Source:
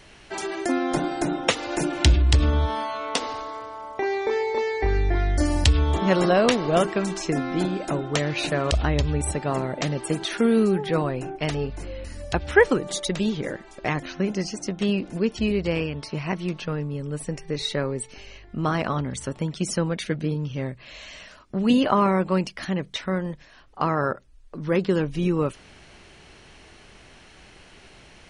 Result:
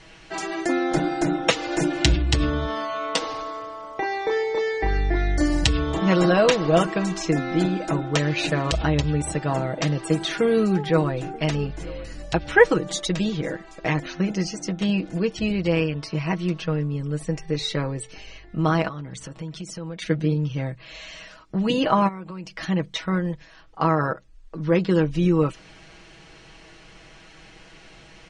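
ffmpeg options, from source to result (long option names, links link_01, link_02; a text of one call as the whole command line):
ffmpeg -i in.wav -filter_complex "[0:a]asettb=1/sr,asplit=3[link_01][link_02][link_03];[link_01]atrim=end=9.174[link_04];[link_02]atrim=start=9.17:end=12.24,asetpts=PTS-STARTPTS,afade=type=in:duration=0.004:curve=qsin,afade=type=out:start_time=3.066:duration=0.004:curve=qsin,aecho=1:1:932:0.0794,atrim=end_sample=135387[link_05];[link_03]atrim=start=12.236[link_06];[link_04][link_05]acrossfade=duration=0.004:curve1=hsin:curve2=qsin[link_07];[link_07][link_06]acrossfade=duration=0.004:curve1=qsin:curve2=hsin,asettb=1/sr,asplit=3[link_08][link_09][link_10];[link_08]atrim=end=18.884[link_11];[link_09]atrim=start=18.88:end=20.02,asetpts=PTS-STARTPTS,afade=type=in:duration=0.004:curve=qsin,afade=type=out:start_time=1.136:duration=0.004:curve=qsin,acompressor=threshold=-34dB:ratio=6:attack=3.2:release=140:knee=1:detection=peak[link_12];[link_10]atrim=start=20.016[link_13];[link_11][link_12]acrossfade=duration=0.004:curve1=hsin:curve2=qsin[link_14];[link_14][link_13]acrossfade=duration=0.004:curve1=qsin:curve2=hsin,asplit=3[link_15][link_16][link_17];[link_15]afade=type=out:start_time=22.07:duration=0.02[link_18];[link_16]acompressor=threshold=-35dB:ratio=6:attack=3.2:release=140:knee=1:detection=peak,afade=type=in:start_time=22.07:duration=0.02,afade=type=out:start_time=22.55:duration=0.02[link_19];[link_17]afade=type=in:start_time=22.55:duration=0.02[link_20];[link_18][link_19][link_20]amix=inputs=3:normalize=0,lowpass=frequency=8200:width=0.5412,lowpass=frequency=8200:width=1.3066,aecho=1:1:6.2:0.67" out.wav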